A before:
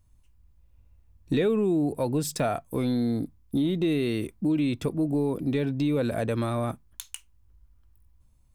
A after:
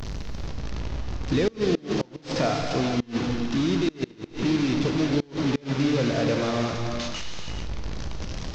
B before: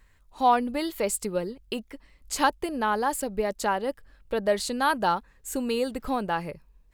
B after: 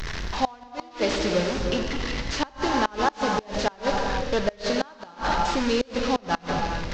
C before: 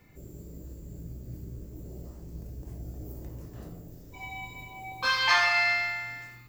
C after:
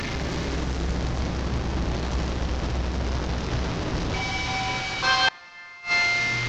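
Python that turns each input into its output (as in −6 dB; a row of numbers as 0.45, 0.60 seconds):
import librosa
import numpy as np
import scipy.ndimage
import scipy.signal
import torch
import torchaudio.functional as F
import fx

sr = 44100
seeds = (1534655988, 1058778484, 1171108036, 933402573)

y = fx.delta_mod(x, sr, bps=32000, step_db=-27.0)
y = fx.rev_gated(y, sr, seeds[0], gate_ms=480, shape='flat', drr_db=1.5)
y = fx.gate_flip(y, sr, shuts_db=-13.0, range_db=-27)
y = y * 10.0 ** (-26 / 20.0) / np.sqrt(np.mean(np.square(y)))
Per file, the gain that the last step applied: +0.5, +2.5, +4.0 decibels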